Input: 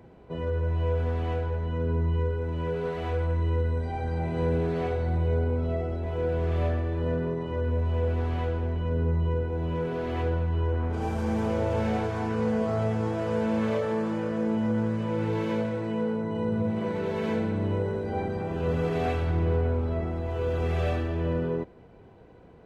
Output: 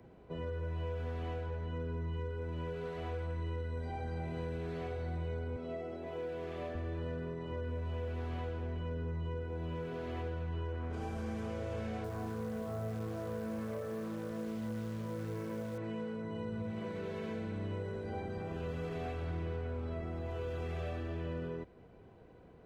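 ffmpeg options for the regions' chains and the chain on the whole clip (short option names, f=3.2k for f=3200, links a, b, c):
-filter_complex "[0:a]asettb=1/sr,asplit=3[a][b][c];[a]atrim=end=5.564[d];[b]atrim=start=5.56:end=6.75,asetpts=PTS-STARTPTS,afade=t=in:d=0.004:c=qsin,afade=t=out:st=1.186:d=0.004:c=qsin,highpass=210,bandreject=f=1.4k:w=10[e];[c]atrim=start=6.746[f];[d][e]acrossfade=d=0.004:c1=hsin:c2=qsin[g];[g][f]acrossfade=d=0.004:c1=qsin:c2=hsin,asettb=1/sr,asplit=3[h][i][j];[h]atrim=end=12.044[k];[i]atrim=start=12.04:end=15.78,asetpts=PTS-STARTPTS,afade=t=in:d=0.004:c=qsin,afade=t=out:st=3.736:d=0.004:c=qsin,lowpass=1.5k,acrusher=bits=8:dc=4:mix=0:aa=0.000001[l];[j]atrim=start=15.776[m];[k][l]acrossfade=d=0.004:c1=hsin:c2=qsin[n];[n][m]acrossfade=d=0.004:c1=qsin:c2=hsin,bandreject=f=880:w=12,acrossover=split=84|1300|3200[o][p][q][r];[o]acompressor=threshold=-41dB:ratio=4[s];[p]acompressor=threshold=-33dB:ratio=4[t];[q]acompressor=threshold=-49dB:ratio=4[u];[r]acompressor=threshold=-57dB:ratio=4[v];[s][t][u][v]amix=inputs=4:normalize=0,volume=-5.5dB"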